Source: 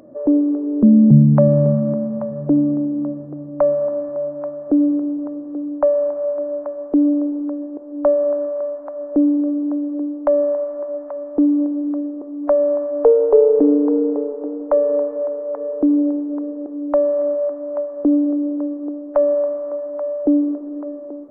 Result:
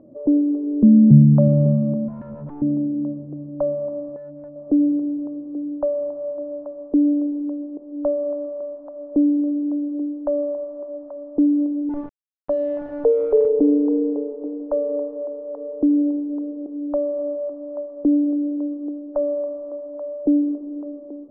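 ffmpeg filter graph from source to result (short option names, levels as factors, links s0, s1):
-filter_complex "[0:a]asettb=1/sr,asplit=3[s0][s1][s2];[s0]atrim=end=2.084[s3];[s1]atrim=start=2.08:end=2.62,asetpts=PTS-STARTPTS,afade=t=in:d=0.004:c=qsin,afade=t=out:st=0.536:d=0.004:c=qsin,bandreject=f=50:t=h:w=6,bandreject=f=100:t=h:w=6,bandreject=f=150:t=h:w=6,bandreject=f=200:t=h:w=6,bandreject=f=250:t=h:w=6,acompressor=threshold=0.0891:ratio=12:attack=3.2:release=140:knee=1:detection=peak,aeval=exprs='0.0501*(abs(mod(val(0)/0.0501+3,4)-2)-1)':c=same[s4];[s2]atrim=start=2.616[s5];[s3][s4]acrossfade=d=0.004:c1=hsin:c2=qsin[s6];[s6][s5]acrossfade=d=0.004:c1=qsin:c2=hsin,asettb=1/sr,asplit=3[s7][s8][s9];[s7]atrim=end=4.164[s10];[s8]atrim=start=4.16:end=4.56,asetpts=PTS-STARTPTS,afade=t=in:d=0.004:c=qsin,afade=t=out:st=0.396:d=0.004:c=qsin,equalizer=f=1600:w=0.36:g=-9.5,volume=25.1,asoftclip=hard,volume=0.0398[s11];[s9]atrim=start=4.556[s12];[s10][s11]acrossfade=d=0.004:c1=hsin:c2=qsin[s13];[s13][s12]acrossfade=d=0.004:c1=qsin:c2=hsin,asettb=1/sr,asplit=3[s14][s15][s16];[s14]atrim=end=11.894[s17];[s15]atrim=start=11.89:end=13.48,asetpts=PTS-STARTPTS,afade=t=in:d=0.004:c=qsin,afade=t=out:st=1.586:d=0.004:c=qsin,aeval=exprs='val(0)*gte(abs(val(0)),0.0891)':c=same,adynamicequalizer=threshold=0.0282:dfrequency=1500:dqfactor=0.7:tfrequency=1500:tqfactor=0.7:attack=5:release=100:ratio=0.375:range=2.5:mode=cutabove:tftype=highshelf[s18];[s16]atrim=start=13.476[s19];[s17][s18]acrossfade=d=0.004:c1=hsin:c2=qsin[s20];[s20][s19]acrossfade=d=0.004:c1=qsin:c2=hsin,lowpass=1300,tiltshelf=f=710:g=9,volume=0.398"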